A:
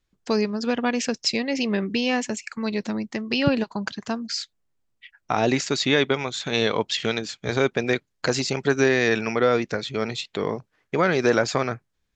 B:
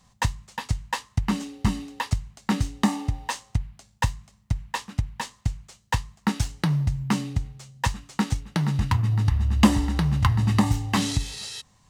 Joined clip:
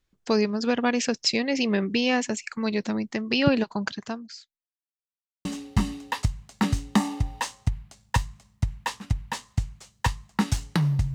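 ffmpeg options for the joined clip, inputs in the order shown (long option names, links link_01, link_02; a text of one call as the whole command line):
ffmpeg -i cue0.wav -i cue1.wav -filter_complex "[0:a]apad=whole_dur=11.14,atrim=end=11.14,asplit=2[link_01][link_02];[link_01]atrim=end=4.68,asetpts=PTS-STARTPTS,afade=type=out:start_time=3.93:duration=0.75:curve=qua[link_03];[link_02]atrim=start=4.68:end=5.45,asetpts=PTS-STARTPTS,volume=0[link_04];[1:a]atrim=start=1.33:end=7.02,asetpts=PTS-STARTPTS,afade=type=in:duration=0.004:curve=hsin[link_05];[link_03][link_04][link_05]concat=n=3:v=0:a=1" out.wav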